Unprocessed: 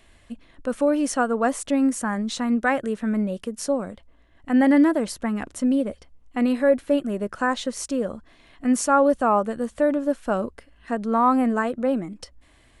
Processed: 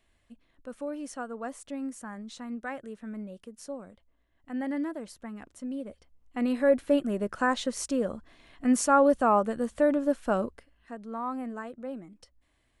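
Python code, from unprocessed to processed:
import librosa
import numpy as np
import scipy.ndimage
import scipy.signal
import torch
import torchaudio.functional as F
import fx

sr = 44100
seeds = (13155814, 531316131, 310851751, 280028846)

y = fx.gain(x, sr, db=fx.line((5.68, -15.0), (6.78, -3.0), (10.41, -3.0), (10.93, -15.0)))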